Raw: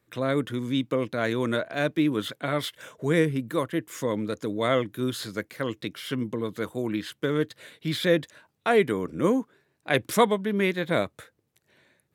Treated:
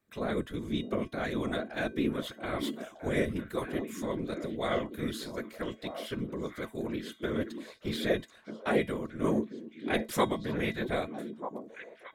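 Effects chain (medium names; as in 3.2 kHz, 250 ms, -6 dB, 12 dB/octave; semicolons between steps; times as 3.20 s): whisper effect; feedback comb 220 Hz, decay 0.24 s, harmonics odd, mix 60%; on a send: repeats whose band climbs or falls 621 ms, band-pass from 280 Hz, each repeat 1.4 oct, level -5 dB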